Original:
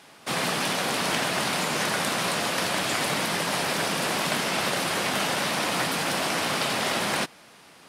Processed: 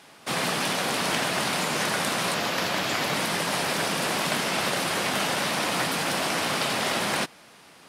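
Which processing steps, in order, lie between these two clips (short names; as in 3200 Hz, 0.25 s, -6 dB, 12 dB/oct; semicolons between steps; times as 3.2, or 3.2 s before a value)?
2.34–3.14 bell 9100 Hz -9.5 dB 0.4 oct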